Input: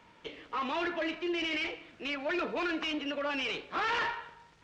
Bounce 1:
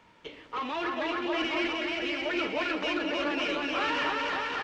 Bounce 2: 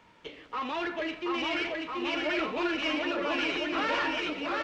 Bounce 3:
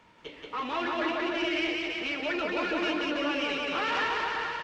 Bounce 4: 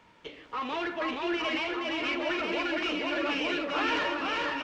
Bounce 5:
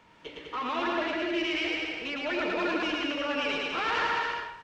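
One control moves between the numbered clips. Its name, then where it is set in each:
bouncing-ball echo, first gap: 0.31, 0.73, 0.18, 0.47, 0.11 s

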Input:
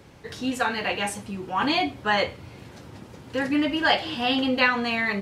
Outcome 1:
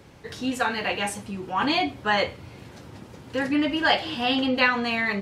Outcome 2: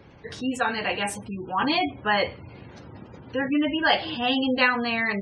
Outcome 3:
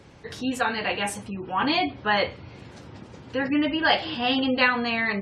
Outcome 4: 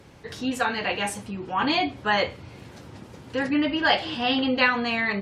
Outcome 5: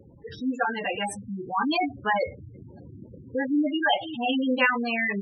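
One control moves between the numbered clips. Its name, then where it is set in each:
spectral gate, under each frame's peak: -60, -25, -35, -45, -10 dB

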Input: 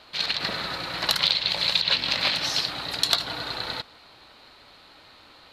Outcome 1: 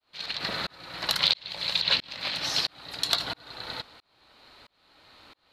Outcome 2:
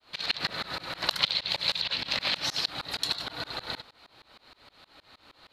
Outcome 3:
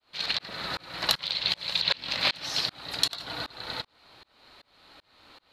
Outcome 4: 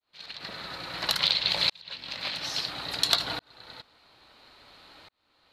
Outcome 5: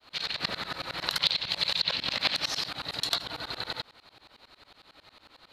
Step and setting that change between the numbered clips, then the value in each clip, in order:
tremolo, rate: 1.5, 6.4, 2.6, 0.59, 11 Hz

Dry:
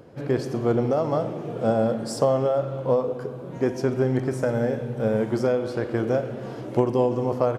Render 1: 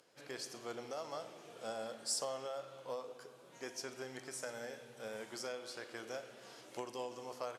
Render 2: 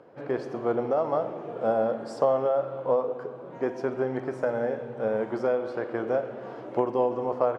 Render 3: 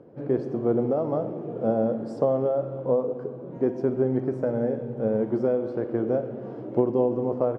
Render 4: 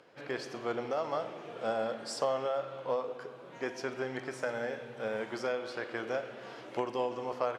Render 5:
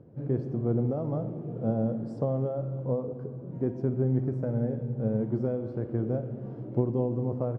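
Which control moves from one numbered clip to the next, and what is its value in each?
band-pass, frequency: 7800, 920, 330, 2600, 120 Hz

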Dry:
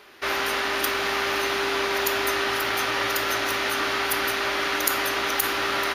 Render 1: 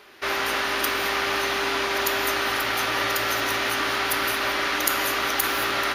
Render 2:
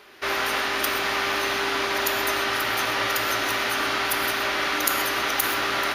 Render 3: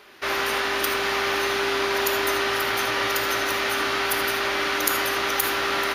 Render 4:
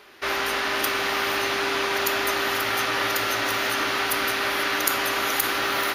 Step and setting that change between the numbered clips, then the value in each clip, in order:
non-linear reverb, gate: 0.25, 0.15, 0.1, 0.52 s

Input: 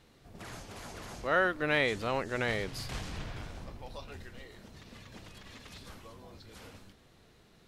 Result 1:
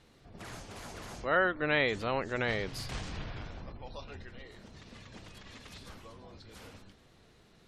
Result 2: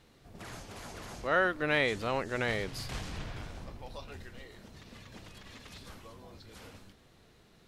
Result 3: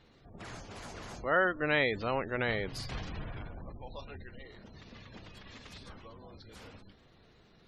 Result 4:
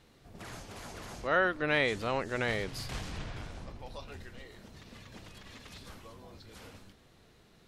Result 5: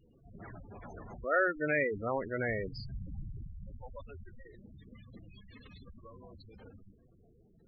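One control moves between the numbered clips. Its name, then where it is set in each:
spectral gate, under each frame's peak: -35, -60, -25, -50, -10 dB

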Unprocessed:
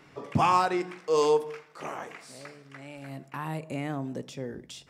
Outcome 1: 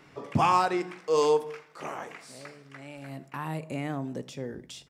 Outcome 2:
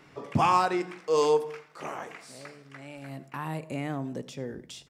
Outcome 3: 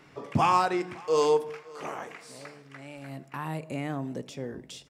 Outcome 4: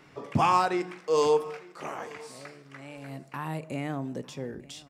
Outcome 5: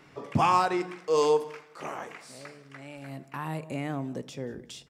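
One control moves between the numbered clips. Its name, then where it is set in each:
feedback echo, time: 63, 93, 562, 901, 184 ms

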